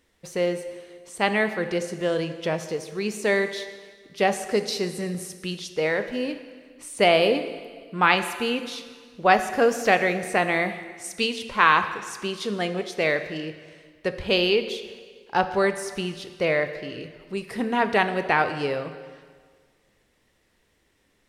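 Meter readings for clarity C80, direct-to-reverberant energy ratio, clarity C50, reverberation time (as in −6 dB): 12.0 dB, 9.0 dB, 10.5 dB, 1.7 s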